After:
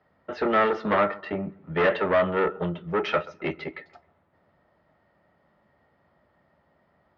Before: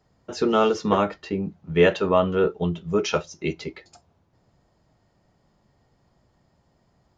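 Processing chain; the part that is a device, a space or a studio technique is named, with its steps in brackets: analogue delay pedal into a guitar amplifier (analogue delay 0.132 s, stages 2048, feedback 33%, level -22.5 dB; tube stage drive 21 dB, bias 0.5; speaker cabinet 79–3600 Hz, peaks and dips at 120 Hz -9 dB, 590 Hz +7 dB, 880 Hz +3 dB, 1300 Hz +8 dB, 1900 Hz +9 dB)

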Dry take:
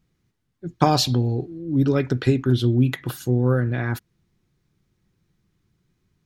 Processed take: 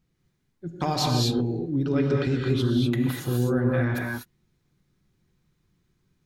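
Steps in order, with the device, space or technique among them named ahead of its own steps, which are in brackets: 1.76–2.47 air absorption 55 m; clipper into limiter (hard clip -7 dBFS, distortion -28 dB; limiter -13.5 dBFS, peak gain reduction 6.5 dB); non-linear reverb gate 0.27 s rising, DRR -1 dB; gain -3.5 dB

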